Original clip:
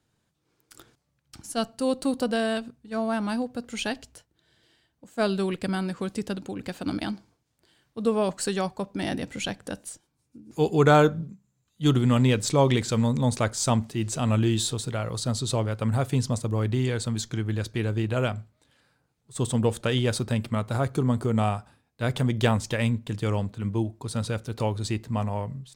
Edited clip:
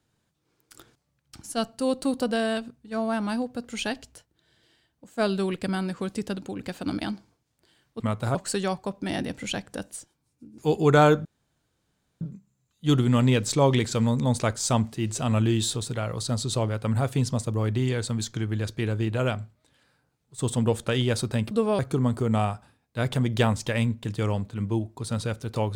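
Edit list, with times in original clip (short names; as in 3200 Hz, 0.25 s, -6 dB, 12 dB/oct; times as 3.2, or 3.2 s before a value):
8–8.28 swap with 20.48–20.83
11.18 insert room tone 0.96 s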